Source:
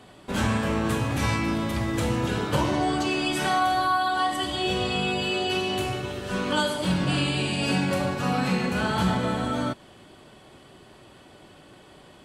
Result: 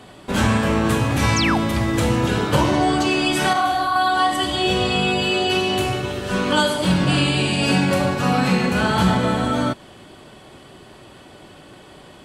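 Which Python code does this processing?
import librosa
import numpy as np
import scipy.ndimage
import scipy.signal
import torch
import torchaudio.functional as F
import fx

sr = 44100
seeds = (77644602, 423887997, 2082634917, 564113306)

y = fx.spec_paint(x, sr, seeds[0], shape='fall', start_s=1.36, length_s=0.22, low_hz=620.0, high_hz=7300.0, level_db=-29.0)
y = fx.detune_double(y, sr, cents=40, at=(3.53, 3.96))
y = y * librosa.db_to_amplitude(6.5)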